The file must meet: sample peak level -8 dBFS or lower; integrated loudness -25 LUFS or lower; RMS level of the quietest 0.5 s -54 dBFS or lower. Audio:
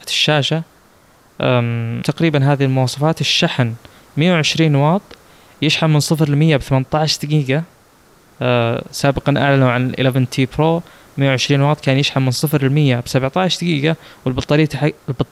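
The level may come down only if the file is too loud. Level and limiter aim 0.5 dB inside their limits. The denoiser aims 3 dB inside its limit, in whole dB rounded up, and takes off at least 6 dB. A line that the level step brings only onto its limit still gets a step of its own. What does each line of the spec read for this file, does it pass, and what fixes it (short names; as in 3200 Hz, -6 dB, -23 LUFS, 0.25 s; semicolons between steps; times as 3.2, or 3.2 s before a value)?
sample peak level -3.5 dBFS: fail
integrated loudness -16.0 LUFS: fail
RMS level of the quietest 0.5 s -50 dBFS: fail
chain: gain -9.5 dB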